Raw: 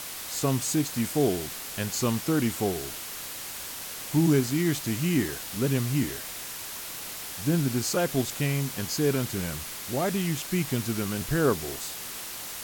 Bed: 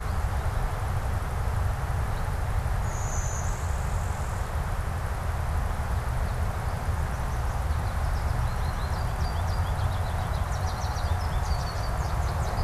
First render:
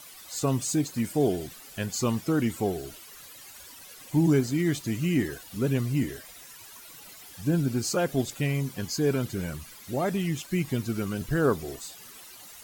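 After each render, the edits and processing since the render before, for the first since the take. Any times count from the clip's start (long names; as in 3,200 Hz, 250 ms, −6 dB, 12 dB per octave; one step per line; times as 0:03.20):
broadband denoise 14 dB, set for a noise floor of −38 dBFS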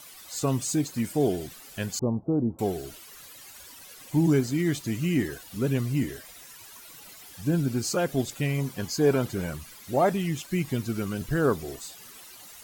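0:01.99–0:02.59: Butterworth low-pass 870 Hz
0:08.57–0:10.13: dynamic equaliser 770 Hz, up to +8 dB, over −41 dBFS, Q 0.75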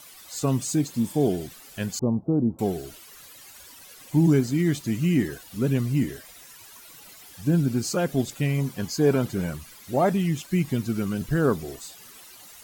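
dynamic equaliser 190 Hz, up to +5 dB, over −36 dBFS, Q 1.2
0:00.92–0:01.18: healed spectral selection 840–3,600 Hz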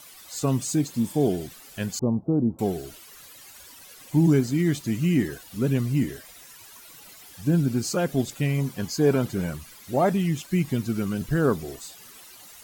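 no processing that can be heard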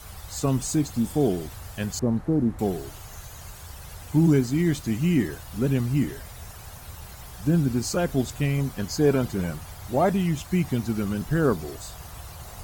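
mix in bed −14 dB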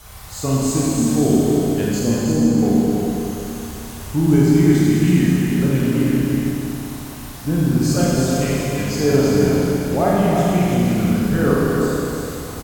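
single-tap delay 326 ms −5 dB
four-comb reverb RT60 2.9 s, combs from 30 ms, DRR −5.5 dB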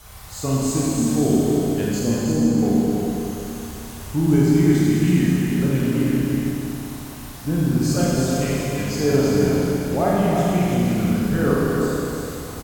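level −2.5 dB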